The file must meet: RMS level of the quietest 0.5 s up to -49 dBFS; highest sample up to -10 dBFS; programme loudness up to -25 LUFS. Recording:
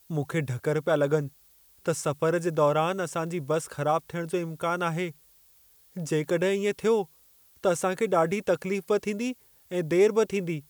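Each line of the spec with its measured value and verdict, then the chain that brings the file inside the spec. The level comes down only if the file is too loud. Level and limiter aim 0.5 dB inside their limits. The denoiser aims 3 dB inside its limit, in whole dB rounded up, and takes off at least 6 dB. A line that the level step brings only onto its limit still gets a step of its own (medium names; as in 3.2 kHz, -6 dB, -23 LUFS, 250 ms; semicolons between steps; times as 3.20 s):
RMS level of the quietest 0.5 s -59 dBFS: pass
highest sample -11.5 dBFS: pass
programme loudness -27.0 LUFS: pass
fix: none needed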